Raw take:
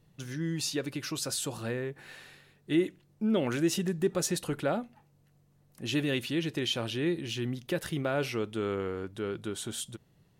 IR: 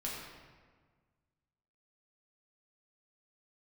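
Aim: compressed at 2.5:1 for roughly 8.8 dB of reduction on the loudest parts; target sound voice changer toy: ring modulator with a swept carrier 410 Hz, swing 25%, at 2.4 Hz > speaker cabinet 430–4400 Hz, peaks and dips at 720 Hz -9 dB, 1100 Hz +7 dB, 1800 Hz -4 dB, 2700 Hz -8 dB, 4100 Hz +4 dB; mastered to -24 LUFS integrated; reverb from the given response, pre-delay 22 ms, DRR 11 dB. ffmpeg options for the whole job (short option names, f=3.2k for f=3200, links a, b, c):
-filter_complex "[0:a]acompressor=threshold=-35dB:ratio=2.5,asplit=2[a][b];[1:a]atrim=start_sample=2205,adelay=22[c];[b][c]afir=irnorm=-1:irlink=0,volume=-13dB[d];[a][d]amix=inputs=2:normalize=0,aeval=exprs='val(0)*sin(2*PI*410*n/s+410*0.25/2.4*sin(2*PI*2.4*n/s))':c=same,highpass=430,equalizer=f=720:t=q:w=4:g=-9,equalizer=f=1.1k:t=q:w=4:g=7,equalizer=f=1.8k:t=q:w=4:g=-4,equalizer=f=2.7k:t=q:w=4:g=-8,equalizer=f=4.1k:t=q:w=4:g=4,lowpass=f=4.4k:w=0.5412,lowpass=f=4.4k:w=1.3066,volume=20.5dB"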